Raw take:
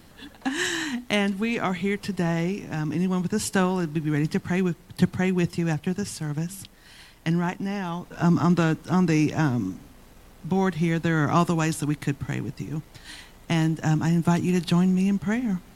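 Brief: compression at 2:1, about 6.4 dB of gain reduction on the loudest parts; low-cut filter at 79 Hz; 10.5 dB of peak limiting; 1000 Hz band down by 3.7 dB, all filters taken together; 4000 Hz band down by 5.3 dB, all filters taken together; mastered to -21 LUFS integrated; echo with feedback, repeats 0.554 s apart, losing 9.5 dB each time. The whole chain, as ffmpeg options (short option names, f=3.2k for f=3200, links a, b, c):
-af "highpass=79,equalizer=f=1k:t=o:g=-4.5,equalizer=f=4k:t=o:g=-7.5,acompressor=threshold=-27dB:ratio=2,alimiter=level_in=1dB:limit=-24dB:level=0:latency=1,volume=-1dB,aecho=1:1:554|1108|1662|2216:0.335|0.111|0.0365|0.012,volume=13dB"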